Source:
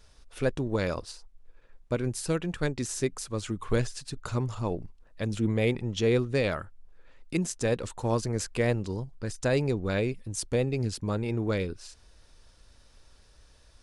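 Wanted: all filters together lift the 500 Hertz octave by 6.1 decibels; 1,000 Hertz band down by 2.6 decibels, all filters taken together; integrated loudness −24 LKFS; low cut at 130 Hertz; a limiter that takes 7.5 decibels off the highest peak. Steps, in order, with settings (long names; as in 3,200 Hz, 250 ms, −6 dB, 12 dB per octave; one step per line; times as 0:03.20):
high-pass filter 130 Hz
parametric band 500 Hz +8.5 dB
parametric band 1,000 Hz −7 dB
level +5.5 dB
brickwall limiter −11.5 dBFS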